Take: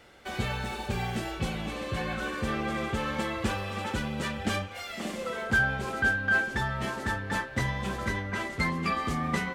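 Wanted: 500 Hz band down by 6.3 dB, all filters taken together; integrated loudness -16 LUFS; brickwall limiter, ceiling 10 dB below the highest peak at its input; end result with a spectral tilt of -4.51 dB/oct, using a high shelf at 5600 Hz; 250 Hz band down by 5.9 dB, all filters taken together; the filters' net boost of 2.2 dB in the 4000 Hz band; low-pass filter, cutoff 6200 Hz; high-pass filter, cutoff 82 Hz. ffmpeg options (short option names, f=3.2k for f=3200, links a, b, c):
-af "highpass=82,lowpass=6.2k,equalizer=f=250:t=o:g=-6.5,equalizer=f=500:t=o:g=-6,equalizer=f=4k:t=o:g=4.5,highshelf=f=5.6k:g=-3,volume=18.5dB,alimiter=limit=-6.5dB:level=0:latency=1"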